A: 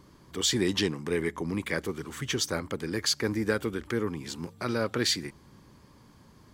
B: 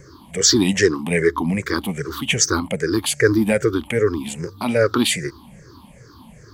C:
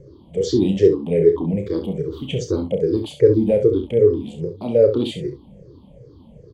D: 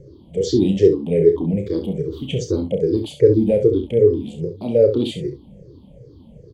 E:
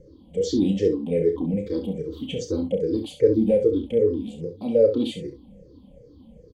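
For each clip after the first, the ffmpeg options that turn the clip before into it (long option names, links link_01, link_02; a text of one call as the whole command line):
ffmpeg -i in.wav -af "afftfilt=real='re*pow(10,22/40*sin(2*PI*(0.53*log(max(b,1)*sr/1024/100)/log(2)-(-2.5)*(pts-256)/sr)))':imag='im*pow(10,22/40*sin(2*PI*(0.53*log(max(b,1)*sr/1024/100)/log(2)-(-2.5)*(pts-256)/sr)))':win_size=1024:overlap=0.75,volume=6dB" out.wav
ffmpeg -i in.wav -filter_complex "[0:a]firequalizer=gain_entry='entry(150,0);entry(240,-4);entry(490,6);entry(770,-9);entry(1500,-28);entry(3200,-9);entry(5200,-21);entry(12000,-28)':delay=0.05:min_phase=1,asplit=2[link_01][link_02];[link_02]aecho=0:1:31|66:0.422|0.335[link_03];[link_01][link_03]amix=inputs=2:normalize=0" out.wav
ffmpeg -i in.wav -af "equalizer=frequency=1200:width=1.1:gain=-8,volume=1.5dB" out.wav
ffmpeg -i in.wav -af "aecho=1:1:3.9:0.64,volume=-5.5dB" out.wav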